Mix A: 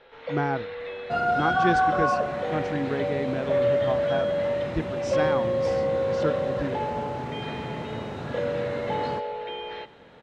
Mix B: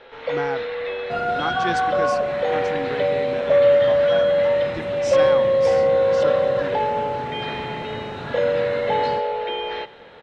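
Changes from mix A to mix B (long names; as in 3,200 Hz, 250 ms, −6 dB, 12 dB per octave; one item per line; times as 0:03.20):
speech: add spectral tilt +2.5 dB per octave
first sound +8.0 dB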